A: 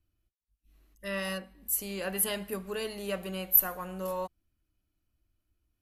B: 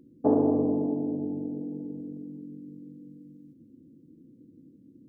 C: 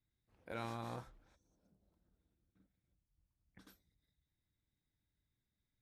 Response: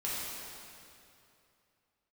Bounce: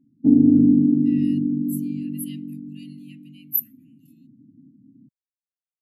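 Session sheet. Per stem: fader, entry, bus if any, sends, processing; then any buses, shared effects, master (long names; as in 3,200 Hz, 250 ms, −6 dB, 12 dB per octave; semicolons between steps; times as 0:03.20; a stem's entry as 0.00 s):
−1.0 dB, 0.00 s, no send, Butterworth high-pass 2,100 Hz 48 dB per octave
+2.0 dB, 0.00 s, no send, octave-band graphic EQ 125/250/500/1,000 Hz +12/+10/−12/−9 dB
−6.0 dB, 0.00 s, no send, gain into a clipping stage and back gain 33.5 dB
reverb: not used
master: automatic gain control gain up to 5 dB; every bin expanded away from the loudest bin 1.5 to 1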